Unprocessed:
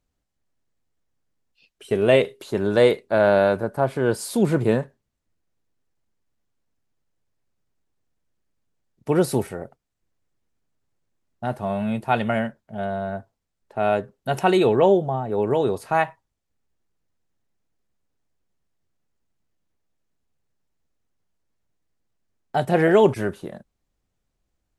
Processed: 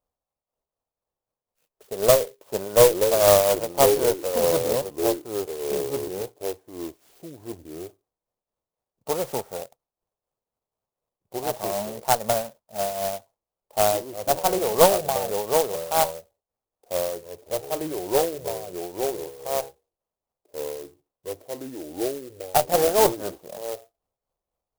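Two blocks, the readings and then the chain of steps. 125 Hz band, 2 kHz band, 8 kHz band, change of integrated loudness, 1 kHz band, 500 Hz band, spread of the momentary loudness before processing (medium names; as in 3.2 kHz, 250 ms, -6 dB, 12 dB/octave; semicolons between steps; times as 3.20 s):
-8.0 dB, -5.5 dB, +13.5 dB, -1.5 dB, +1.0 dB, 0.0 dB, 14 LU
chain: high-order bell 760 Hz +14.5 dB; tremolo triangle 4 Hz, depth 65%; ever faster or slower copies 534 ms, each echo -3 st, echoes 2, each echo -6 dB; Chebyshev shaper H 2 -11 dB, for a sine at 6 dBFS; sampling jitter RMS 0.1 ms; trim -10 dB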